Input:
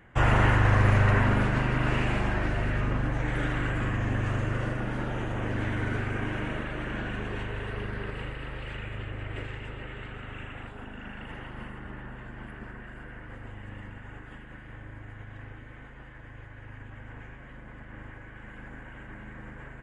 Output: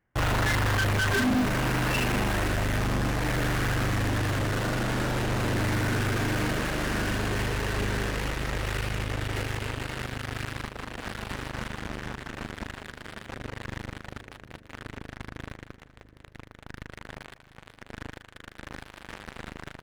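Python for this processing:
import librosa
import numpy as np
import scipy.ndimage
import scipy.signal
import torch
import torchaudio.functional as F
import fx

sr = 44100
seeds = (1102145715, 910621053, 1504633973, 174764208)

p1 = scipy.ndimage.median_filter(x, 9, mode='constant')
p2 = fx.noise_reduce_blind(p1, sr, reduce_db=21)
p3 = fx.fuzz(p2, sr, gain_db=64.0, gate_db=-59.0)
p4 = p2 + (p3 * 10.0 ** (-11.5 / 20.0))
y = fx.echo_split(p4, sr, split_hz=590.0, low_ms=767, high_ms=196, feedback_pct=52, wet_db=-14.5)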